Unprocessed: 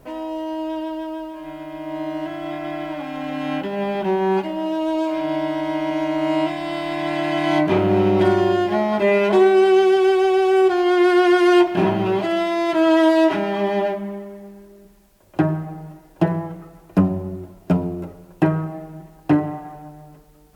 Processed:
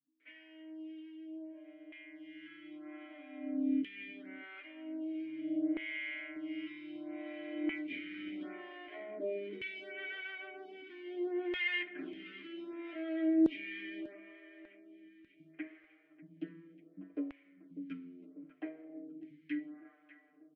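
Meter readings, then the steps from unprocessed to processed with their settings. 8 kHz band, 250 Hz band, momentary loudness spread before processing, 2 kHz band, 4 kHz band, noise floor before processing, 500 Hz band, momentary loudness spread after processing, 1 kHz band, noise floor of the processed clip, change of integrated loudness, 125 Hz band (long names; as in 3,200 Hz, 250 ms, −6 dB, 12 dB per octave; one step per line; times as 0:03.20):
can't be measured, −18.0 dB, 17 LU, −14.5 dB, −18.0 dB, −49 dBFS, −26.5 dB, 20 LU, −34.5 dB, −66 dBFS, −20.5 dB, below −35 dB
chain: formant filter i
comb filter 6.7 ms, depth 83%
multiband delay without the direct sound lows, highs 200 ms, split 160 Hz
auto-filter band-pass saw down 0.52 Hz 460–2,400 Hz
repeating echo 595 ms, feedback 53%, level −17.5 dB
phaser with staggered stages 0.71 Hz
level +6 dB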